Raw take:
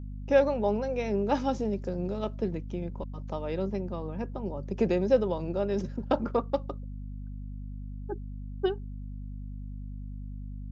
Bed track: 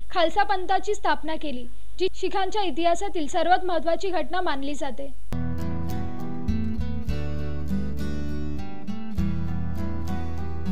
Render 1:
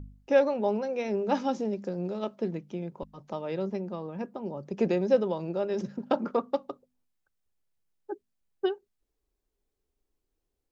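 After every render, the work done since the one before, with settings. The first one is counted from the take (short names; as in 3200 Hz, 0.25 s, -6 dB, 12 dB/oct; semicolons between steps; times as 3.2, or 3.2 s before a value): de-hum 50 Hz, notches 5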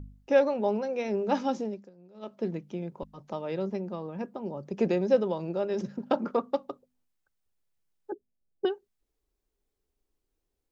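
1.57–2.46 dip -22 dB, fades 0.33 s; 8.12–8.65 inverse Chebyshev low-pass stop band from 1800 Hz, stop band 50 dB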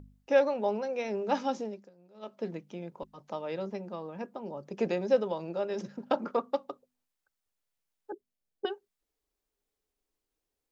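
low shelf 240 Hz -10 dB; notch 370 Hz, Q 12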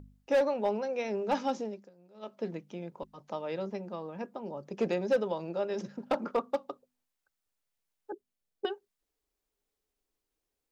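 hard clip -20.5 dBFS, distortion -14 dB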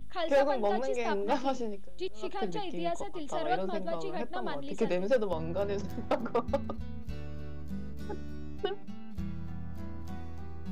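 add bed track -12 dB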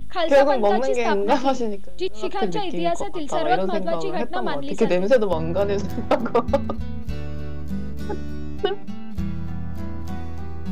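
gain +10.5 dB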